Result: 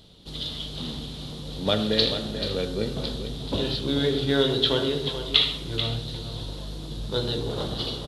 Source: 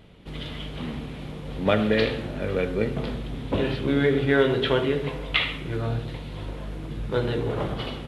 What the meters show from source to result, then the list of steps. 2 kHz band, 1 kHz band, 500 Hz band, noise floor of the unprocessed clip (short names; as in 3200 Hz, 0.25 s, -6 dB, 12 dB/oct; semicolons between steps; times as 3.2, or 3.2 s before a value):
-6.5 dB, -4.0 dB, -3.0 dB, -37 dBFS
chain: resonant high shelf 3000 Hz +10 dB, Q 3; on a send: echo 0.436 s -9.5 dB; on the sum: gain -3 dB